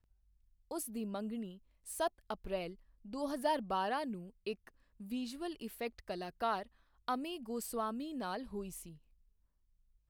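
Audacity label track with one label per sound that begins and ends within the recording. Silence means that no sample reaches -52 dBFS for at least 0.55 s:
0.710000	8.970000	sound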